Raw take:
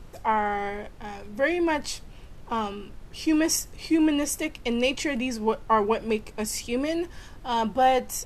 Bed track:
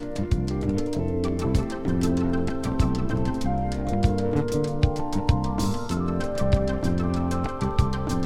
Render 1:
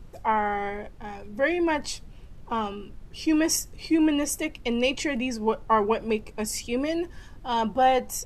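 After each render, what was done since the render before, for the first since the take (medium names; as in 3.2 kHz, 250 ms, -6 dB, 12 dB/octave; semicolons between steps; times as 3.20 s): noise reduction 6 dB, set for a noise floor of -45 dBFS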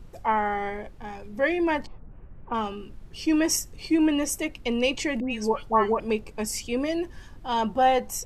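1.85–2.53 s: low-pass 1.2 kHz -> 2.5 kHz 24 dB/octave; 5.20–6.00 s: phase dispersion highs, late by 111 ms, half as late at 1.6 kHz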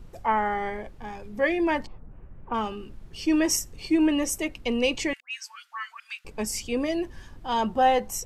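5.13–6.25 s: elliptic high-pass 1.4 kHz, stop band 70 dB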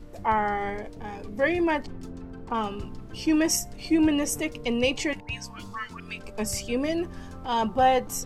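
add bed track -17.5 dB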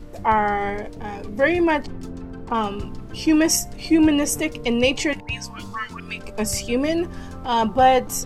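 trim +5.5 dB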